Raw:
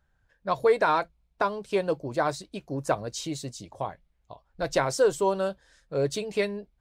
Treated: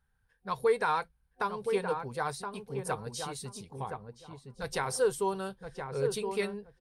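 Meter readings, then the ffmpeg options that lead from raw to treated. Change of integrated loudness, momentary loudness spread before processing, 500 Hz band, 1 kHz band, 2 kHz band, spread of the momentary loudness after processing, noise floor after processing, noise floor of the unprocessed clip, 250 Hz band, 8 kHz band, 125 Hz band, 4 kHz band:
-5.5 dB, 13 LU, -5.5 dB, -4.5 dB, -4.5 dB, 14 LU, -73 dBFS, -71 dBFS, -7.0 dB, -2.5 dB, -4.5 dB, -5.0 dB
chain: -filter_complex "[0:a]superequalizer=6b=0.282:8b=0.316:15b=0.708:16b=3.16,asplit=2[a][b];[b]adelay=1021,lowpass=f=1.2k:p=1,volume=-5dB,asplit=2[c][d];[d]adelay=1021,lowpass=f=1.2k:p=1,volume=0.21,asplit=2[e][f];[f]adelay=1021,lowpass=f=1.2k:p=1,volume=0.21[g];[c][e][g]amix=inputs=3:normalize=0[h];[a][h]amix=inputs=2:normalize=0,volume=-5dB"

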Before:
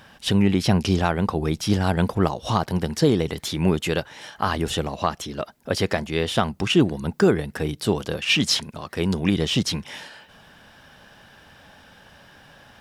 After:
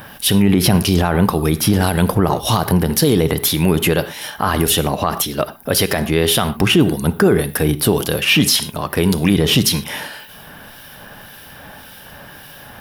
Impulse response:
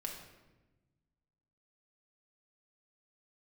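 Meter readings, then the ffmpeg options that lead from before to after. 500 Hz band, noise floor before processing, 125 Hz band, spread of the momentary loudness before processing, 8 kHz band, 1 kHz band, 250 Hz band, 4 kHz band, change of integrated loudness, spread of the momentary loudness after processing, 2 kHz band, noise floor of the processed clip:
+6.0 dB, -51 dBFS, +7.0 dB, 8 LU, +13.0 dB, +6.0 dB, +6.5 dB, +7.5 dB, +7.0 dB, 7 LU, +7.0 dB, -39 dBFS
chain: -filter_complex "[0:a]acrossover=split=2300[a][b];[a]aeval=exprs='val(0)*(1-0.5/2+0.5/2*cos(2*PI*1.8*n/s))':c=same[c];[b]aeval=exprs='val(0)*(1-0.5/2-0.5/2*cos(2*PI*1.8*n/s))':c=same[d];[c][d]amix=inputs=2:normalize=0,aexciter=amount=4:drive=9.1:freq=10k,asplit=2[e][f];[1:a]atrim=start_sample=2205,atrim=end_sample=3969,asetrate=30870,aresample=44100[g];[f][g]afir=irnorm=-1:irlink=0,volume=-9.5dB[h];[e][h]amix=inputs=2:normalize=0,alimiter=level_in=13.5dB:limit=-1dB:release=50:level=0:latency=1,volume=-3dB"

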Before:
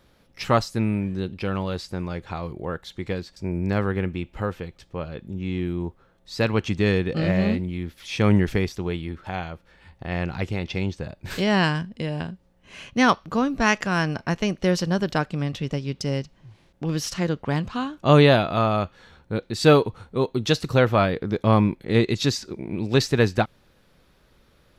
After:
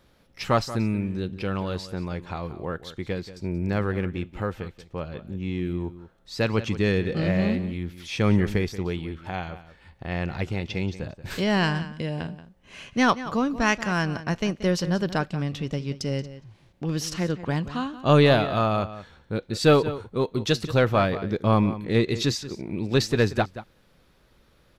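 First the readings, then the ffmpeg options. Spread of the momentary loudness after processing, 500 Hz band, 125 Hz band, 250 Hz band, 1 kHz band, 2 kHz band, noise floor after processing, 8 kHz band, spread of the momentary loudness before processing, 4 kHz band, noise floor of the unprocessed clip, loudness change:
13 LU, -2.0 dB, -2.0 dB, -2.0 dB, -2.0 dB, -2.0 dB, -60 dBFS, -1.5 dB, 13 LU, -1.5 dB, -60 dBFS, -2.0 dB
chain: -filter_complex "[0:a]asplit=2[a][b];[b]aeval=exprs='clip(val(0),-1,0.0841)':c=same,volume=-11dB[c];[a][c]amix=inputs=2:normalize=0,asplit=2[d][e];[e]adelay=180.8,volume=-14dB,highshelf=f=4k:g=-4.07[f];[d][f]amix=inputs=2:normalize=0,volume=-3.5dB"

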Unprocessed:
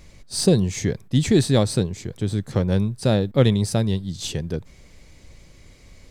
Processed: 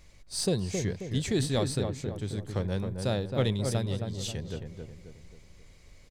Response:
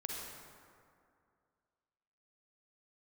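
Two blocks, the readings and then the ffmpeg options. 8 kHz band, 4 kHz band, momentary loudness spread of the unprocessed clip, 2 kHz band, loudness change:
-7.0 dB, -7.0 dB, 10 LU, -6.5 dB, -9.0 dB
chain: -filter_complex "[0:a]equalizer=f=210:w=0.57:g=-5.5,asplit=2[a][b];[b]adelay=268,lowpass=f=1.5k:p=1,volume=-5dB,asplit=2[c][d];[d]adelay=268,lowpass=f=1.5k:p=1,volume=0.47,asplit=2[e][f];[f]adelay=268,lowpass=f=1.5k:p=1,volume=0.47,asplit=2[g][h];[h]adelay=268,lowpass=f=1.5k:p=1,volume=0.47,asplit=2[i][j];[j]adelay=268,lowpass=f=1.5k:p=1,volume=0.47,asplit=2[k][l];[l]adelay=268,lowpass=f=1.5k:p=1,volume=0.47[m];[c][e][g][i][k][m]amix=inputs=6:normalize=0[n];[a][n]amix=inputs=2:normalize=0,volume=-7dB"

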